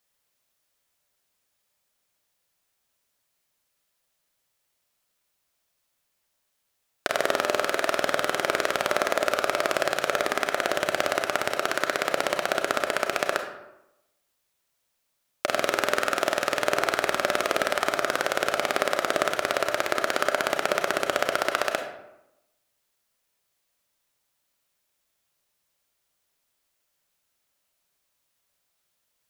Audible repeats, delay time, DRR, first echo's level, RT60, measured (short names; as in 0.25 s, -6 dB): none, none, 4.5 dB, none, 0.90 s